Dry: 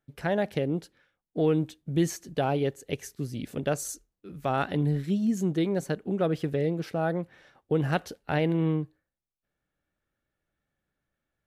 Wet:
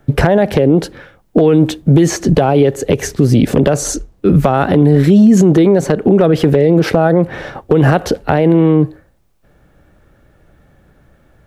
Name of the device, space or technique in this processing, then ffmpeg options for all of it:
mastering chain: -filter_complex "[0:a]equalizer=frequency=240:width_type=o:width=1.6:gain=-3.5,acrossover=split=240|1400|8000[link_01][link_02][link_03][link_04];[link_01]acompressor=threshold=-44dB:ratio=4[link_05];[link_02]acompressor=threshold=-31dB:ratio=4[link_06];[link_03]acompressor=threshold=-39dB:ratio=4[link_07];[link_04]acompressor=threshold=-58dB:ratio=4[link_08];[link_05][link_06][link_07][link_08]amix=inputs=4:normalize=0,acompressor=threshold=-37dB:ratio=2.5,tiltshelf=frequency=1200:gain=7.5,asoftclip=type=hard:threshold=-23.5dB,alimiter=level_in=31dB:limit=-1dB:release=50:level=0:latency=1,volume=-1dB"

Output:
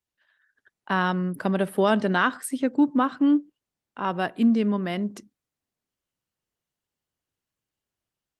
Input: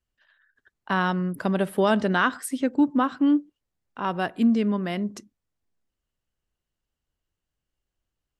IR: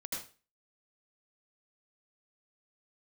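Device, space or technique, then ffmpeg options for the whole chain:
video call: -filter_complex "[0:a]asplit=3[link_01][link_02][link_03];[link_01]afade=type=out:start_time=3.19:duration=0.02[link_04];[link_02]highshelf=frequency=5500:gain=-3,afade=type=in:start_time=3.19:duration=0.02,afade=type=out:start_time=4.16:duration=0.02[link_05];[link_03]afade=type=in:start_time=4.16:duration=0.02[link_06];[link_04][link_05][link_06]amix=inputs=3:normalize=0,highpass=110,dynaudnorm=framelen=340:gausssize=3:maxgain=3.5dB,volume=-3dB" -ar 48000 -c:a libopus -b:a 32k

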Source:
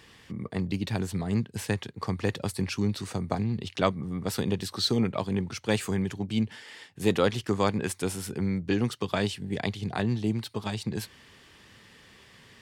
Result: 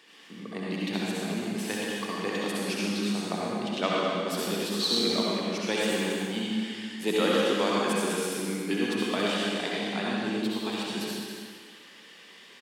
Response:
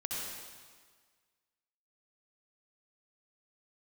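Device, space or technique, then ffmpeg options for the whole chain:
stadium PA: -filter_complex "[0:a]highpass=frequency=220:width=0.5412,highpass=frequency=220:width=1.3066,equalizer=frequency=3100:width_type=o:width=1.2:gain=4,aecho=1:1:209.9|274.1:0.316|0.282[link_01];[1:a]atrim=start_sample=2205[link_02];[link_01][link_02]afir=irnorm=-1:irlink=0,volume=-1.5dB"

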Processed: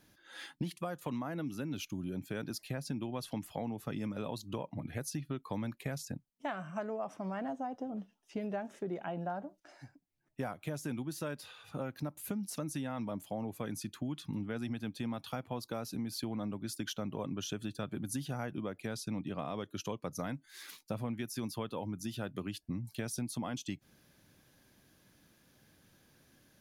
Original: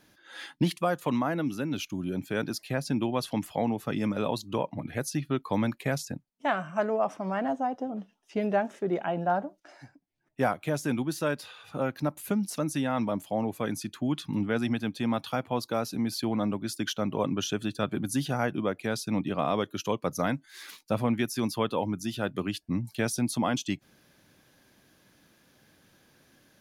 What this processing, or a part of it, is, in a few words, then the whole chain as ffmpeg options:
ASMR close-microphone chain: -filter_complex "[0:a]lowshelf=frequency=170:gain=7.5,acompressor=threshold=-29dB:ratio=4,highshelf=frequency=6300:gain=5,asettb=1/sr,asplit=3[link_01][link_02][link_03];[link_01]atrim=end=18.964[link_04];[link_02]atrim=start=18.96:end=20.17,asetpts=PTS-STARTPTS,afade=type=in:duration=0.004:curve=qsin,afade=type=out:start_time=1.206:duration=0.004:curve=qsin,lowpass=12000[link_05];[link_03]atrim=start=20.166[link_06];[link_04][link_05]acrossfade=duration=0.004:curve1=hsin:curve2=qsin[link_07];[link_07][link_06]acrossfade=duration=0.004:curve1=qsin:curve2=hsin,volume=-6dB"

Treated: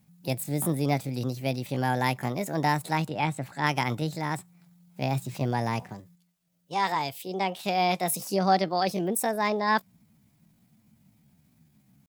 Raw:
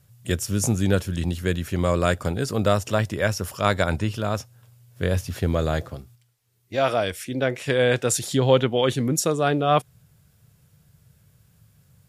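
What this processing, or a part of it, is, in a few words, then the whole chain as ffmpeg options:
chipmunk voice: -filter_complex "[0:a]asettb=1/sr,asplit=3[link_01][link_02][link_03];[link_01]atrim=end=3.104[link_04];[link_02]atrim=start=3.1:end=3.67,asetpts=PTS-STARTPTS,afade=type=in:duration=0.004:curve=qsin,afade=type=out:start_time=0.566:duration=0.004:curve=qsin,aemphasis=mode=reproduction:type=75fm[link_05];[link_03]atrim=start=3.666[link_06];[link_04][link_05]acrossfade=duration=0.004:curve1=hsin:curve2=qsin[link_07];[link_07][link_06]acrossfade=duration=0.004:curve1=qsin:curve2=hsin,asetrate=64194,aresample=44100,atempo=0.686977,volume=-5dB"

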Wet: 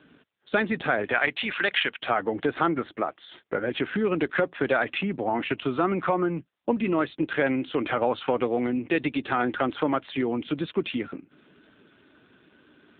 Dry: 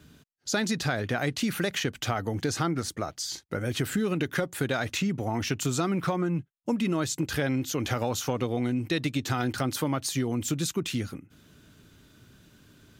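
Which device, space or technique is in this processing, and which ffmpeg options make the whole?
telephone: -filter_complex "[0:a]asplit=3[link_01][link_02][link_03];[link_01]afade=type=out:start_time=1.11:duration=0.02[link_04];[link_02]tiltshelf=frequency=970:gain=-7.5,afade=type=in:start_time=1.11:duration=0.02,afade=type=out:start_time=2:duration=0.02[link_05];[link_03]afade=type=in:start_time=2:duration=0.02[link_06];[link_04][link_05][link_06]amix=inputs=3:normalize=0,highpass=310,lowpass=3300,volume=7dB" -ar 8000 -c:a libopencore_amrnb -b:a 7400

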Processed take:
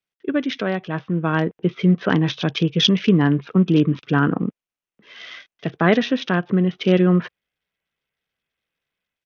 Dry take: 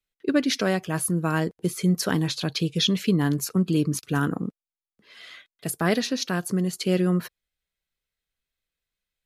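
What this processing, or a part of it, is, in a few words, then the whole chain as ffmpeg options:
Bluetooth headset: -af "highpass=110,dynaudnorm=framelen=820:gausssize=3:maxgain=8dB,aresample=8000,aresample=44100" -ar 48000 -c:a sbc -b:a 64k

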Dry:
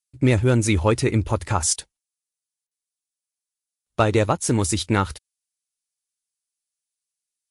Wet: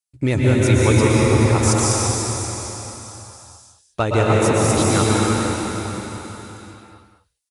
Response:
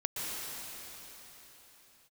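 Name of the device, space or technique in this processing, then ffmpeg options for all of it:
cave: -filter_complex "[0:a]aecho=1:1:199:0.376[link_01];[1:a]atrim=start_sample=2205[link_02];[link_01][link_02]afir=irnorm=-1:irlink=0,volume=-1dB"

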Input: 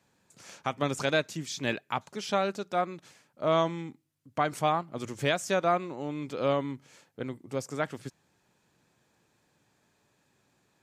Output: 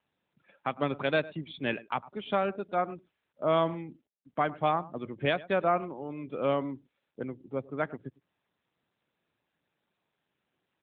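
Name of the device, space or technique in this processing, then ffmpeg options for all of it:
mobile call with aggressive noise cancelling: -af "highpass=120,equalizer=frequency=4800:width=2.4:gain=-2,aecho=1:1:104:0.119,afftdn=noise_reduction=21:noise_floor=-45" -ar 8000 -c:a libopencore_amrnb -b:a 12200

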